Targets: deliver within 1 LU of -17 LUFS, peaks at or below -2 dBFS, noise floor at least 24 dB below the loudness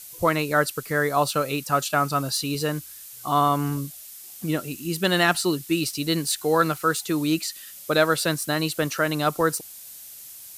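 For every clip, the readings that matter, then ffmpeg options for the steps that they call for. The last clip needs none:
noise floor -43 dBFS; noise floor target -48 dBFS; loudness -24.0 LUFS; peak -8.5 dBFS; loudness target -17.0 LUFS
-> -af "afftdn=nr=6:nf=-43"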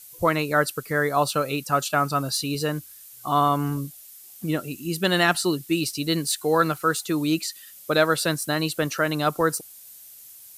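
noise floor -46 dBFS; noise floor target -48 dBFS
-> -af "afftdn=nr=6:nf=-46"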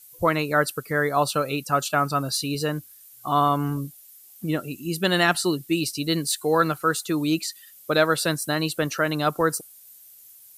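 noise floor -49 dBFS; loudness -24.0 LUFS; peak -8.0 dBFS; loudness target -17.0 LUFS
-> -af "volume=7dB,alimiter=limit=-2dB:level=0:latency=1"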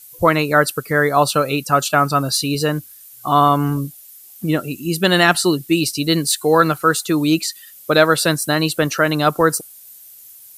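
loudness -17.0 LUFS; peak -2.0 dBFS; noise floor -42 dBFS

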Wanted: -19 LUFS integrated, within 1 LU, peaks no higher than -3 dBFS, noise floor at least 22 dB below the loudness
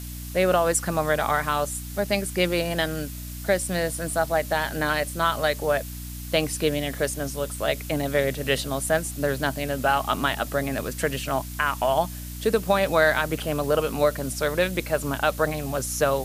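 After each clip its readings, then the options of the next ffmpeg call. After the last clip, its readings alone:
hum 60 Hz; harmonics up to 300 Hz; hum level -34 dBFS; noise floor -36 dBFS; noise floor target -47 dBFS; loudness -25.0 LUFS; peak -7.5 dBFS; loudness target -19.0 LUFS
-> -af "bandreject=f=60:t=h:w=4,bandreject=f=120:t=h:w=4,bandreject=f=180:t=h:w=4,bandreject=f=240:t=h:w=4,bandreject=f=300:t=h:w=4"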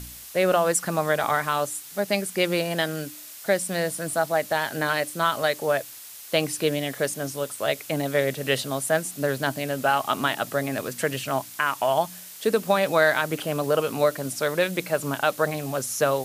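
hum none; noise floor -42 dBFS; noise floor target -47 dBFS
-> -af "afftdn=nr=6:nf=-42"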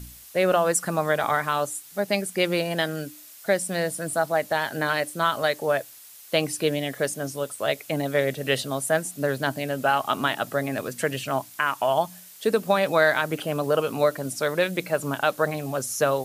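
noise floor -47 dBFS; loudness -25.0 LUFS; peak -8.0 dBFS; loudness target -19.0 LUFS
-> -af "volume=6dB,alimiter=limit=-3dB:level=0:latency=1"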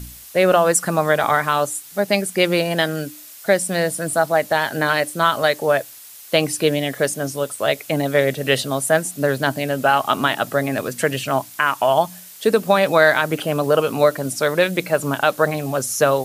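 loudness -19.0 LUFS; peak -3.0 dBFS; noise floor -41 dBFS

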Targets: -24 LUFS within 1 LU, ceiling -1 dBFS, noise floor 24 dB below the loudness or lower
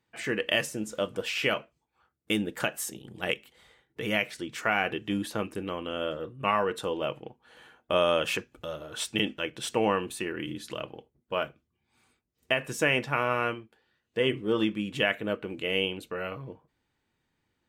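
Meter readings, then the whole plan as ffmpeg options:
loudness -30.0 LUFS; peak -10.5 dBFS; loudness target -24.0 LUFS
-> -af "volume=6dB"

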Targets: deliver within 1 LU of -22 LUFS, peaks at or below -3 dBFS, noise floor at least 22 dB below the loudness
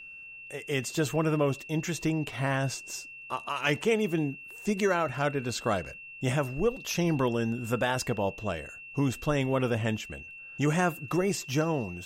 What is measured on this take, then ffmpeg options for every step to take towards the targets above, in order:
steady tone 2700 Hz; tone level -43 dBFS; loudness -29.5 LUFS; peak -13.0 dBFS; loudness target -22.0 LUFS
-> -af "bandreject=f=2.7k:w=30"
-af "volume=7.5dB"

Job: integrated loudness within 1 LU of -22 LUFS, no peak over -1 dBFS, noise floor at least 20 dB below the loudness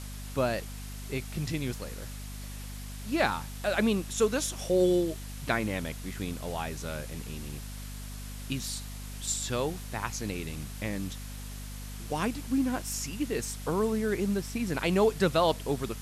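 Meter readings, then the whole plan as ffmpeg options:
hum 50 Hz; harmonics up to 250 Hz; hum level -38 dBFS; noise floor -40 dBFS; noise floor target -51 dBFS; loudness -31.0 LUFS; peak -11.5 dBFS; loudness target -22.0 LUFS
-> -af "bandreject=f=50:t=h:w=6,bandreject=f=100:t=h:w=6,bandreject=f=150:t=h:w=6,bandreject=f=200:t=h:w=6,bandreject=f=250:t=h:w=6"
-af "afftdn=nr=11:nf=-40"
-af "volume=9dB"

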